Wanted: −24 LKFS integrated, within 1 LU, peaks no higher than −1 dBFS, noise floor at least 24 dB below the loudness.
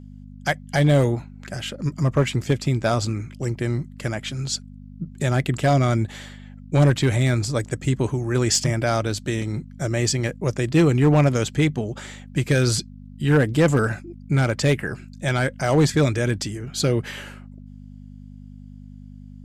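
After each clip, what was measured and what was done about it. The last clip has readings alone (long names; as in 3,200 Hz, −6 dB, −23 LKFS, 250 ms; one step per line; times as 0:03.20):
share of clipped samples 0.4%; peaks flattened at −10.5 dBFS; mains hum 50 Hz; hum harmonics up to 250 Hz; level of the hum −38 dBFS; integrated loudness −22.0 LKFS; sample peak −10.5 dBFS; target loudness −24.0 LKFS
→ clipped peaks rebuilt −10.5 dBFS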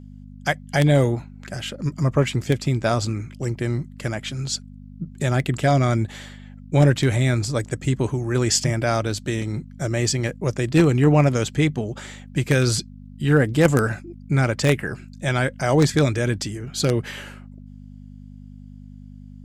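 share of clipped samples 0.0%; mains hum 50 Hz; hum harmonics up to 250 Hz; level of the hum −38 dBFS
→ hum removal 50 Hz, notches 5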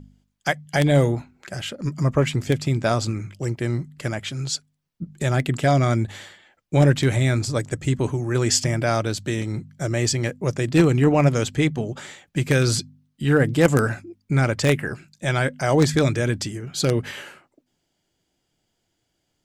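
mains hum none found; integrated loudness −22.0 LKFS; sample peak −1.5 dBFS; target loudness −24.0 LKFS
→ level −2 dB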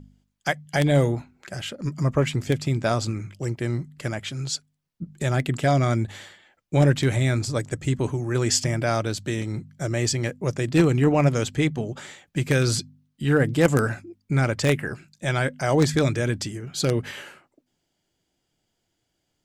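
integrated loudness −24.0 LKFS; sample peak −3.5 dBFS; background noise floor −77 dBFS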